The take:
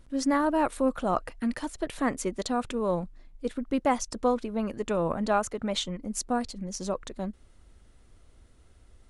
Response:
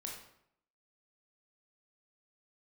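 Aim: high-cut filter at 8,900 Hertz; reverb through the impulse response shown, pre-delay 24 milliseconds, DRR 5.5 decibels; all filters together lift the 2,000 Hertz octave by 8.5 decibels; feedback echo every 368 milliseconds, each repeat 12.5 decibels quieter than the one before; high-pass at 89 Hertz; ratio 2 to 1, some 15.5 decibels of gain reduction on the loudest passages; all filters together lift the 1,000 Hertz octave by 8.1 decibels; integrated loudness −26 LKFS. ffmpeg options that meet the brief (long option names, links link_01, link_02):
-filter_complex "[0:a]highpass=89,lowpass=8900,equalizer=frequency=1000:width_type=o:gain=8.5,equalizer=frequency=2000:width_type=o:gain=7.5,acompressor=threshold=-43dB:ratio=2,aecho=1:1:368|736|1104:0.237|0.0569|0.0137,asplit=2[link_01][link_02];[1:a]atrim=start_sample=2205,adelay=24[link_03];[link_02][link_03]afir=irnorm=-1:irlink=0,volume=-3.5dB[link_04];[link_01][link_04]amix=inputs=2:normalize=0,volume=10.5dB"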